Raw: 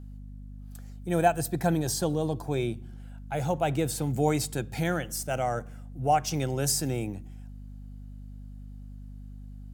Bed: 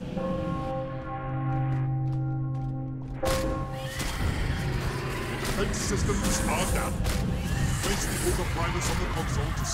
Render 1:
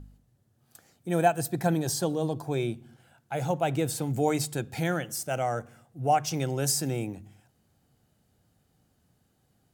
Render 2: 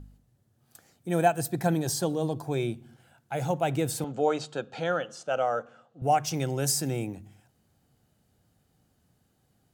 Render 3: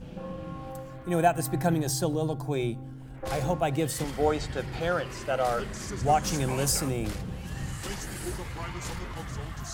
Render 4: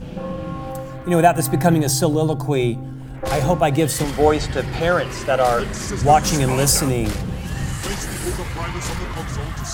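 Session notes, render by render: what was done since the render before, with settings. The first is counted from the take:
hum removal 50 Hz, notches 5
0:04.04–0:06.02: loudspeaker in its box 250–5,700 Hz, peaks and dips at 340 Hz −6 dB, 520 Hz +7 dB, 1,300 Hz +7 dB, 2,100 Hz −9 dB, 3,000 Hz +3 dB, 5,300 Hz −7 dB
mix in bed −8 dB
level +10 dB; brickwall limiter −1 dBFS, peak gain reduction 2.5 dB

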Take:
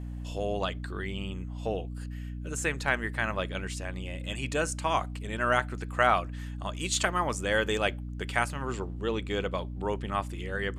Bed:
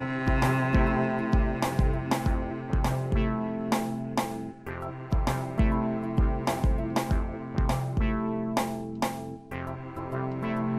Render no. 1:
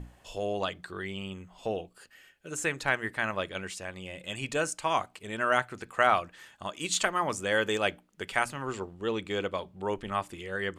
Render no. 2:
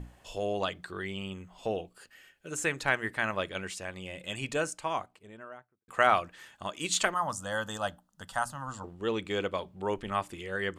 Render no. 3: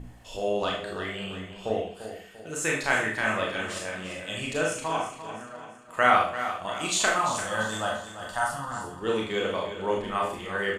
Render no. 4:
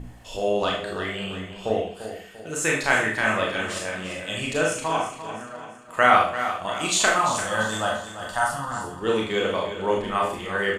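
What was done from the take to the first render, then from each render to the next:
mains-hum notches 60/120/180/240/300 Hz
0:04.30–0:05.88: fade out and dull; 0:07.14–0:08.84: phaser with its sweep stopped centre 950 Hz, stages 4
repeating echo 344 ms, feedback 43%, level −11 dB; four-comb reverb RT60 0.47 s, combs from 25 ms, DRR −2 dB
level +4 dB; brickwall limiter −3 dBFS, peak gain reduction 1.5 dB

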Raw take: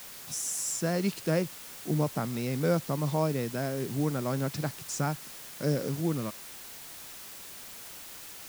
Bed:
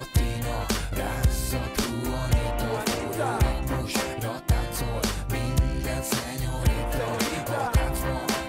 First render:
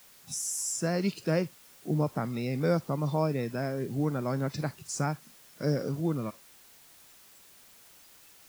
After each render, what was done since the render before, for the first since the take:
noise reduction from a noise print 11 dB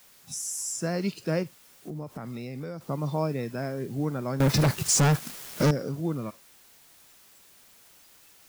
0:01.43–0:02.81: downward compressor, threshold −33 dBFS
0:04.40–0:05.71: leveller curve on the samples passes 5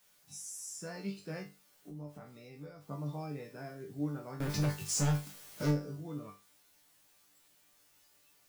resonators tuned to a chord G2 fifth, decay 0.28 s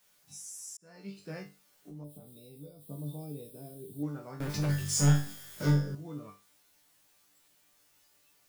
0:00.77–0:01.30: fade in
0:02.04–0:04.03: drawn EQ curve 470 Hz 0 dB, 1,900 Hz −25 dB, 3,600 Hz +5 dB, 6,300 Hz −12 dB, 8,900 Hz +13 dB
0:04.67–0:05.95: flutter between parallel walls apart 3.6 metres, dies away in 0.47 s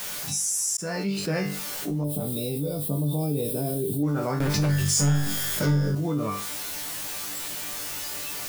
envelope flattener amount 70%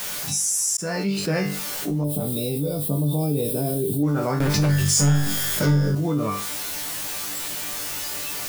level +3.5 dB

